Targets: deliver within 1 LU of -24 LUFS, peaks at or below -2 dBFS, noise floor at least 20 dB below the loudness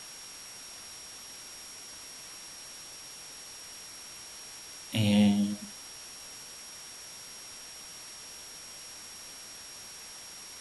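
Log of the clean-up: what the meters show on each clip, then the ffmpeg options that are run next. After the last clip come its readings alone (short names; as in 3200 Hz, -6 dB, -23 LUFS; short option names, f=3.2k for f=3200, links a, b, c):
steady tone 5600 Hz; tone level -47 dBFS; noise floor -47 dBFS; noise floor target -57 dBFS; loudness -36.5 LUFS; peak -15.0 dBFS; loudness target -24.0 LUFS
-> -af "bandreject=f=5.6k:w=30"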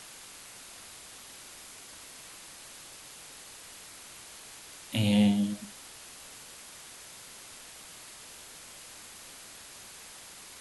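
steady tone none; noise floor -49 dBFS; noise floor target -57 dBFS
-> -af "afftdn=nr=8:nf=-49"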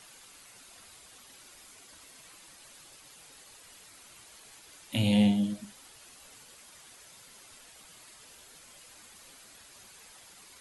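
noise floor -54 dBFS; loudness -27.5 LUFS; peak -15.0 dBFS; loudness target -24.0 LUFS
-> -af "volume=3.5dB"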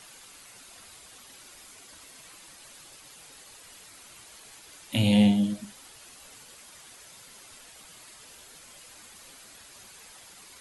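loudness -24.0 LUFS; peak -11.5 dBFS; noise floor -51 dBFS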